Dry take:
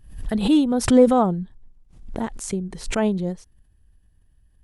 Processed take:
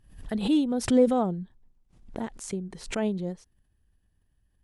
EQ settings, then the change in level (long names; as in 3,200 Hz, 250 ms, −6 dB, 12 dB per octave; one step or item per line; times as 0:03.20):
dynamic equaliser 1,100 Hz, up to −6 dB, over −34 dBFS, Q 1.3
low-shelf EQ 96 Hz −8 dB
high-shelf EQ 9,400 Hz −5.5 dB
−5.0 dB